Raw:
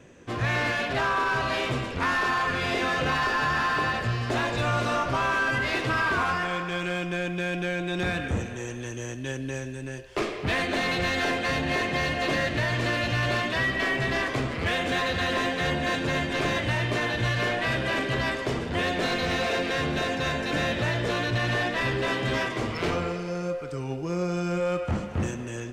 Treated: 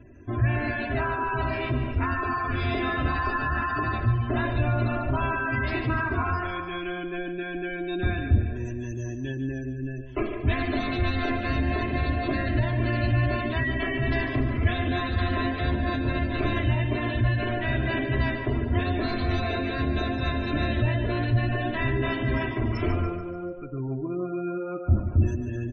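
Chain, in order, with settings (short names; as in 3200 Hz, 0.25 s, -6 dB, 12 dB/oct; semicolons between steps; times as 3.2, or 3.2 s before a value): spectral gate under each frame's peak -20 dB strong; tone controls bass +14 dB, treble -1 dB; comb 3 ms, depth 81%; on a send: feedback echo 0.145 s, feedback 46%, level -11 dB; on the sum: gain -6 dB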